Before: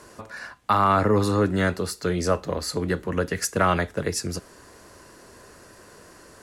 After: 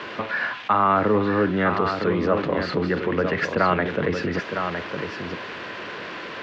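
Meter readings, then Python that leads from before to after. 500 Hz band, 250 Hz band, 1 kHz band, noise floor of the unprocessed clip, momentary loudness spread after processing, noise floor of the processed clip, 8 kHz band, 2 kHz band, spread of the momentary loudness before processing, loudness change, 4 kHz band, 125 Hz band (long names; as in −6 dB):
+2.5 dB, +2.5 dB, +2.0 dB, −50 dBFS, 13 LU, −35 dBFS, below −15 dB, +5.5 dB, 15 LU, +0.5 dB, 0.0 dB, −1.5 dB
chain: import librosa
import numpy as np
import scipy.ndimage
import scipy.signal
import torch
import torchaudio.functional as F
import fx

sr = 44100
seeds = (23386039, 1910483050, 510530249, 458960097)

p1 = x + 0.5 * 10.0 ** (-25.5 / 20.0) * np.diff(np.sign(x), prepend=np.sign(x[:1]))
p2 = scipy.signal.sosfilt(scipy.signal.cheby2(4, 60, 8700.0, 'lowpass', fs=sr, output='sos'), p1)
p3 = fx.over_compress(p2, sr, threshold_db=-33.0, ratio=-1.0)
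p4 = p2 + (p3 * 10.0 ** (1.0 / 20.0))
p5 = scipy.signal.sosfilt(scipy.signal.butter(2, 150.0, 'highpass', fs=sr, output='sos'), p4)
y = p5 + 10.0 ** (-7.0 / 20.0) * np.pad(p5, (int(959 * sr / 1000.0), 0))[:len(p5)]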